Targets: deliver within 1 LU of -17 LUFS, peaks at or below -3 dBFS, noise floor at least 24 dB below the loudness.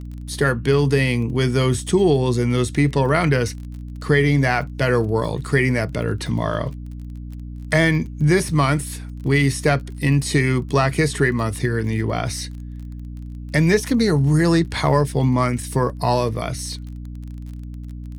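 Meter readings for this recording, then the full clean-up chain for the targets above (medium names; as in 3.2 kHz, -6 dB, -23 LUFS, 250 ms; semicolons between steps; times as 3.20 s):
tick rate 31 per s; hum 60 Hz; highest harmonic 300 Hz; hum level -30 dBFS; loudness -19.5 LUFS; peak level -4.0 dBFS; loudness target -17.0 LUFS
-> de-click; hum notches 60/120/180/240/300 Hz; trim +2.5 dB; peak limiter -3 dBFS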